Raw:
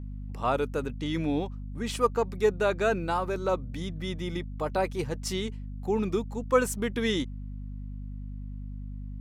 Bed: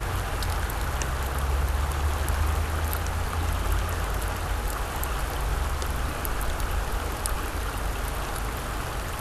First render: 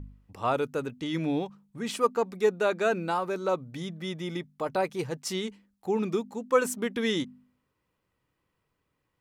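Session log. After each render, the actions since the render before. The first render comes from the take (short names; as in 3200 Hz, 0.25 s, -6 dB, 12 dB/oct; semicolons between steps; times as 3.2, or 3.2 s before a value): de-hum 50 Hz, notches 5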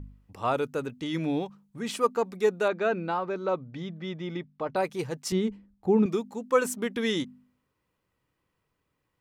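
2.68–4.76 air absorption 170 m; 5.32–6.06 tilt -3.5 dB/oct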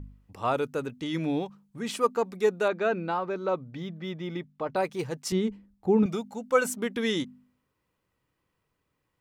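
3.24–5.06 median filter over 3 samples; 6.03–6.7 comb 1.4 ms, depth 52%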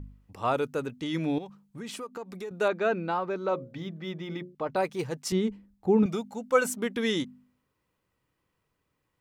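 1.38–2.51 compressor, threshold -35 dBFS; 3.48–4.55 notches 60/120/180/240/300/360/420/480/540/600 Hz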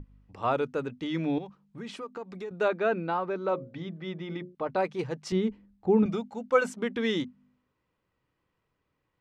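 Bessel low-pass 3800 Hz, order 2; notches 50/100/150/200/250 Hz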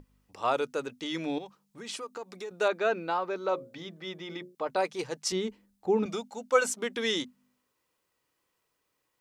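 tone controls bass -12 dB, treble +14 dB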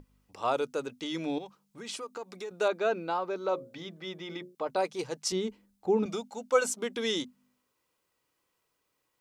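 notch 1800 Hz, Q 18; dynamic EQ 1900 Hz, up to -4 dB, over -42 dBFS, Q 0.88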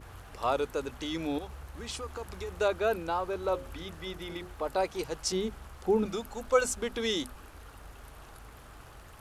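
add bed -19.5 dB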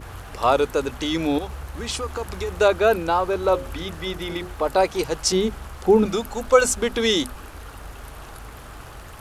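gain +10.5 dB; limiter -3 dBFS, peak gain reduction 2 dB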